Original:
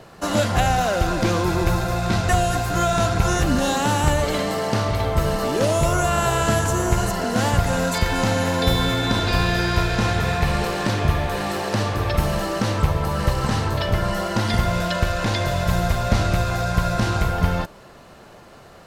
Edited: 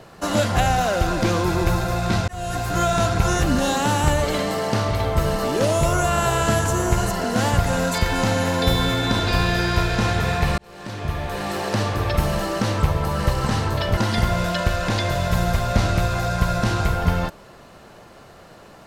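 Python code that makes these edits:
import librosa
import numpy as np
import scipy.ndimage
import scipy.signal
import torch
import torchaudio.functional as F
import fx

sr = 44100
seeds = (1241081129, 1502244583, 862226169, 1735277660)

y = fx.edit(x, sr, fx.fade_in_span(start_s=2.28, length_s=0.58, curve='qsin'),
    fx.fade_in_span(start_s=10.58, length_s=1.07),
    fx.cut(start_s=13.97, length_s=0.36), tone=tone)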